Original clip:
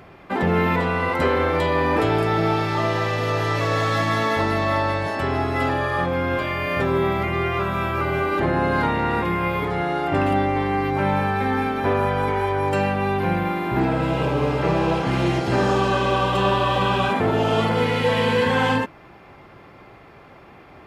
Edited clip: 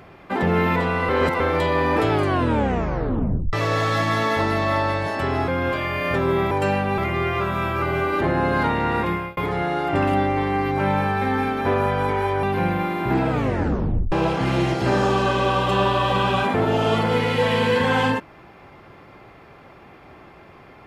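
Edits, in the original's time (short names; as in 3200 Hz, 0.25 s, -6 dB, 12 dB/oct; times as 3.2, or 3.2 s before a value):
1.09–1.4 reverse
2.1 tape stop 1.43 s
5.48–6.14 cut
9.29–9.56 fade out
12.62–13.09 move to 7.17
13.96 tape stop 0.82 s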